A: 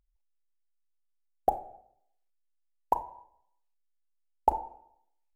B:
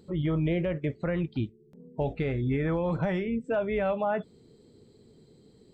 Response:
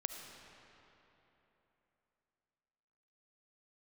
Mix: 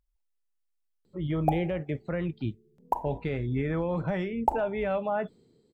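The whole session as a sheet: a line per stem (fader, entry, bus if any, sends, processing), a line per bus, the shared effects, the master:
-1.0 dB, 0.00 s, no send, dry
-1.5 dB, 1.05 s, no send, three-band expander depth 40%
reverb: off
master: dry

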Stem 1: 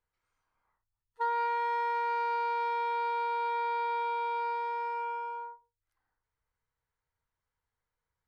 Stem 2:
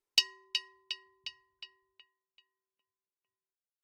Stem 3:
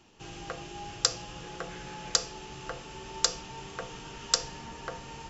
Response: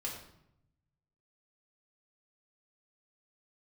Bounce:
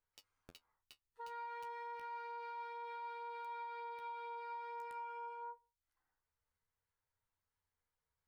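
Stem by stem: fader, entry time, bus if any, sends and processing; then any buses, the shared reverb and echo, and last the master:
-1.0 dB, 0.00 s, no bus, no send, compressor 6:1, threshold -37 dBFS, peak gain reduction 10 dB
-7.5 dB, 0.00 s, bus A, no send, low shelf 470 Hz +9 dB; comb 7.1 ms, depth 51%; compressor 5:1, threshold -38 dBFS, peak gain reduction 18 dB
-17.5 dB, 0.20 s, bus A, no send, low shelf 250 Hz +9.5 dB; Schmitt trigger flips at -30 dBFS; whisperiser
bus A: 0.0 dB, bit-crush 7-bit; compressor 4:1, threshold -49 dBFS, peak gain reduction 9 dB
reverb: off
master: flange 0.28 Hz, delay 9.2 ms, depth 8.3 ms, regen +38%; limiter -40.5 dBFS, peak gain reduction 8 dB

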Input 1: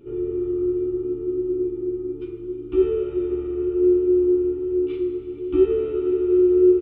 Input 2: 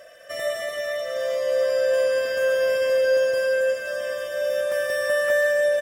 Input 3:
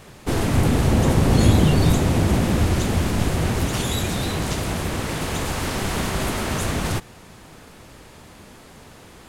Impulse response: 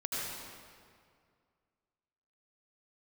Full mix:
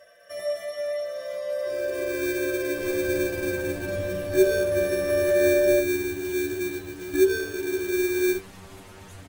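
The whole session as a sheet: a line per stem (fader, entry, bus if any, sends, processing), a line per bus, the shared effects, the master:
-4.5 dB, 1.60 s, no send, AGC gain up to 11.5 dB; sample-rate reducer 2000 Hz, jitter 0%
+1.5 dB, 0.00 s, no send, dry
-13.5 dB, 2.50 s, no send, dry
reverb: off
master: metallic resonator 94 Hz, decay 0.2 s, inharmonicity 0.002

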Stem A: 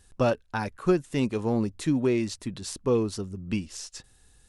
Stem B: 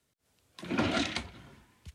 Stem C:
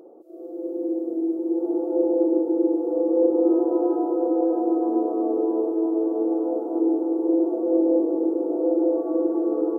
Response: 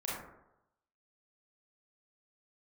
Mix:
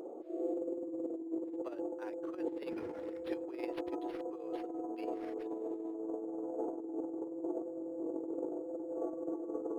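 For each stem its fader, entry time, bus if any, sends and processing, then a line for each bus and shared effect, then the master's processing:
-9.5 dB, 1.45 s, no send, steep high-pass 400 Hz 48 dB/oct; limiter -23 dBFS, peak gain reduction 8 dB
-15.0 dB, 2.00 s, no send, median filter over 15 samples; bell 2000 Hz +6 dB 1.5 oct
-1.0 dB, 0.00 s, no send, bell 270 Hz -3 dB 2.8 oct; compressor 10:1, threshold -30 dBFS, peak gain reduction 14 dB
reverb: off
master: negative-ratio compressor -38 dBFS, ratio -0.5; decimation joined by straight lines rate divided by 6×

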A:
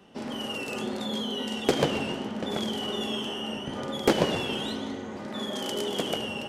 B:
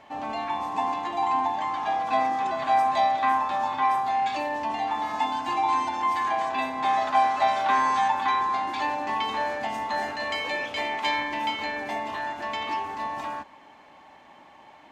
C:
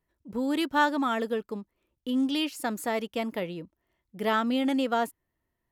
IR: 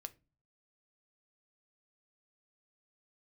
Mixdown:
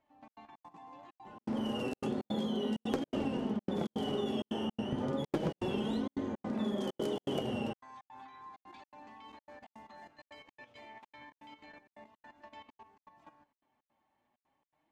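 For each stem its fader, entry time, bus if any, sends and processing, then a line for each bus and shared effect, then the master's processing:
+0.5 dB, 1.25 s, no bus, no send, tilt shelf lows +7 dB, about 930 Hz; hard clip -12.5 dBFS, distortion -16 dB
-15.5 dB, 0.00 s, bus A, no send, low shelf 370 Hz +9.5 dB
-14.5 dB, 0.50 s, bus A, no send, vowel sweep a-e 3.3 Hz
bus A: 0.0 dB, level quantiser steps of 15 dB; limiter -40 dBFS, peak gain reduction 6 dB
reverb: off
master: flange 0.32 Hz, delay 3.1 ms, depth 6.1 ms, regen +50%; step gate "xxx.xx.xx" 163 bpm -60 dB; compressor 6:1, threshold -30 dBFS, peak gain reduction 11 dB

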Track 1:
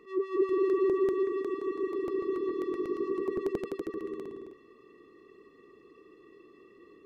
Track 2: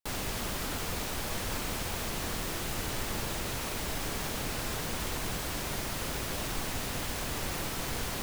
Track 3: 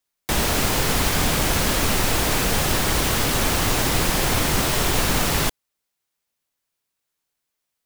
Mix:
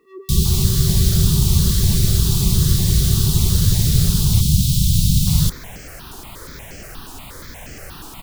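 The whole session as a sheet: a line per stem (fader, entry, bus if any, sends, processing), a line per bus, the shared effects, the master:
-3.0 dB, 0.00 s, no send, compressor, threshold -30 dBFS, peak gain reduction 8.5 dB
+1.0 dB, 0.40 s, muted 4.41–5.27, no send, step phaser 8.4 Hz 560–3700 Hz
+2.0 dB, 0.00 s, no send, elliptic band-stop 180–3700 Hz, stop band 40 dB; bell 97 Hz +11.5 dB 2.9 oct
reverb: off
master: dry

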